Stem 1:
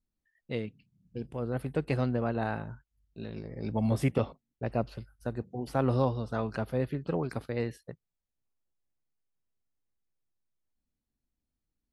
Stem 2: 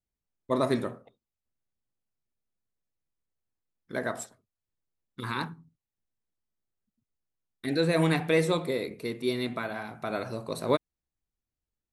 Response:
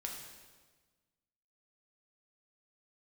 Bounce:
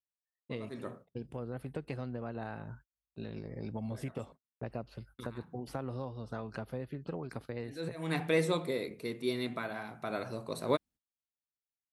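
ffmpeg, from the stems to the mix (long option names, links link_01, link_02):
-filter_complex "[0:a]acompressor=threshold=-36dB:ratio=5,volume=-0.5dB,asplit=2[link_01][link_02];[1:a]volume=-4.5dB[link_03];[link_02]apad=whole_len=526065[link_04];[link_03][link_04]sidechaincompress=threshold=-57dB:ratio=10:attack=11:release=191[link_05];[link_01][link_05]amix=inputs=2:normalize=0,agate=range=-26dB:threshold=-54dB:ratio=16:detection=peak,highpass=52"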